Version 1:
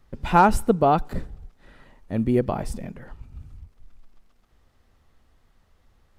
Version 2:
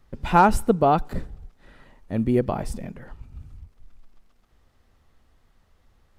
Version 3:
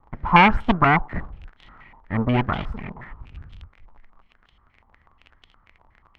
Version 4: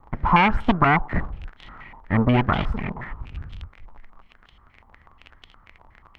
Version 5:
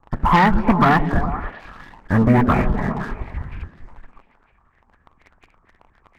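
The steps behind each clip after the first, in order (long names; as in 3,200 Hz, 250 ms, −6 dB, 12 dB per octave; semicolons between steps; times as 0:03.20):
no processing that can be heard
lower of the sound and its delayed copy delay 0.95 ms; surface crackle 25 per second −34 dBFS; low-pass on a step sequencer 8.3 Hz 940–3,200 Hz; level +1 dB
downward compressor 4 to 1, threshold −20 dBFS, peak gain reduction 10 dB; level +5.5 dB
hearing-aid frequency compression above 1,300 Hz 1.5 to 1; leveller curve on the samples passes 2; echo through a band-pass that steps 103 ms, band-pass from 200 Hz, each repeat 0.7 octaves, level −3 dB; level −2 dB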